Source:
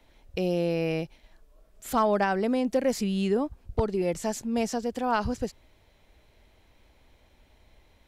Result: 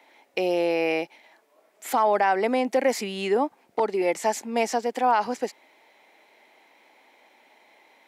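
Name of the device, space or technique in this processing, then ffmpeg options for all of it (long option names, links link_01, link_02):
laptop speaker: -af "highpass=frequency=270:width=0.5412,highpass=frequency=270:width=1.3066,equalizer=frequency=840:width_type=o:width=0.56:gain=9,equalizer=frequency=2100:width_type=o:width=0.53:gain=9,alimiter=limit=-15dB:level=0:latency=1,volume=3dB"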